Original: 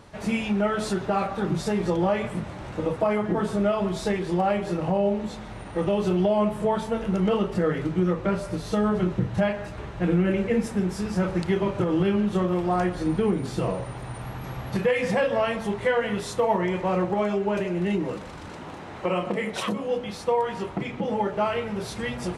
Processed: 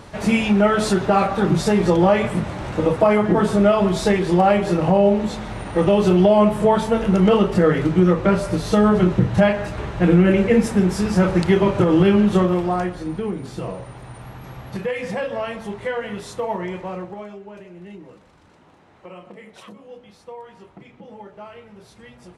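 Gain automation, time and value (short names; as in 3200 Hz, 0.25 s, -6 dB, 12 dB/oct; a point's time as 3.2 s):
12.36 s +8 dB
13.05 s -2.5 dB
16.72 s -2.5 dB
17.46 s -14 dB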